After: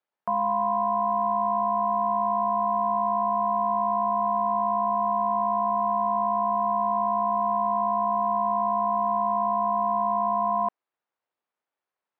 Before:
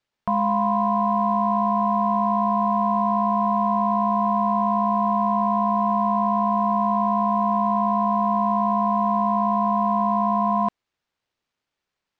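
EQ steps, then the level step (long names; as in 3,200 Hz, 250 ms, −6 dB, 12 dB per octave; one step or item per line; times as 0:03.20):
resonant band-pass 810 Hz, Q 0.82
−2.0 dB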